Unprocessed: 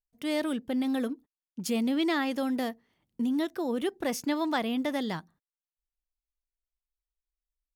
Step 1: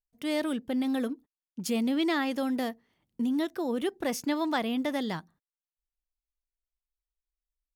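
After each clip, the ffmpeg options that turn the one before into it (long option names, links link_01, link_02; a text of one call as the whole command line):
ffmpeg -i in.wav -af anull out.wav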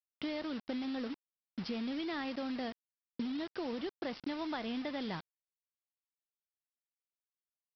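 ffmpeg -i in.wav -af "acompressor=threshold=-36dB:ratio=16,aresample=11025,acrusher=bits=7:mix=0:aa=0.000001,aresample=44100,volume=1dB" out.wav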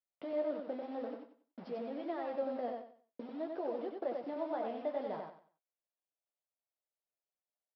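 ffmpeg -i in.wav -filter_complex "[0:a]bandpass=frequency=610:width_type=q:width=2.8:csg=0,flanger=delay=9.6:depth=8.4:regen=-38:speed=0.53:shape=triangular,asplit=2[link_01][link_02];[link_02]aecho=0:1:93|186|279|372:0.631|0.17|0.046|0.0124[link_03];[link_01][link_03]amix=inputs=2:normalize=0,volume=10.5dB" out.wav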